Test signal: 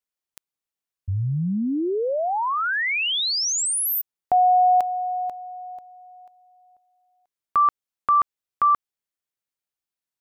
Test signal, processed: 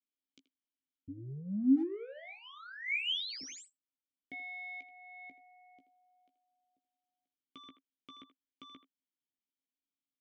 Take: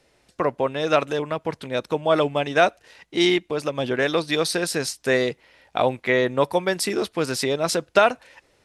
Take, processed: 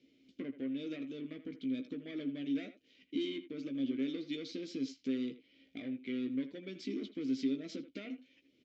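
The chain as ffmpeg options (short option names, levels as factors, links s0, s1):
-filter_complex "[0:a]equalizer=f=1800:t=o:w=0.96:g=-15,acompressor=threshold=0.0398:ratio=3:attack=1:release=982:knee=1:detection=peak,aresample=16000,asoftclip=type=tanh:threshold=0.0335,aresample=44100,asplit=3[s0][s1][s2];[s0]bandpass=f=270:t=q:w=8,volume=1[s3];[s1]bandpass=f=2290:t=q:w=8,volume=0.501[s4];[s2]bandpass=f=3010:t=q:w=8,volume=0.355[s5];[s3][s4][s5]amix=inputs=3:normalize=0,asplit=2[s6][s7];[s7]adelay=15,volume=0.422[s8];[s6][s8]amix=inputs=2:normalize=0,asplit=2[s9][s10];[s10]adelay=80,highpass=300,lowpass=3400,asoftclip=type=hard:threshold=0.0168,volume=0.251[s11];[s9][s11]amix=inputs=2:normalize=0,volume=2.66"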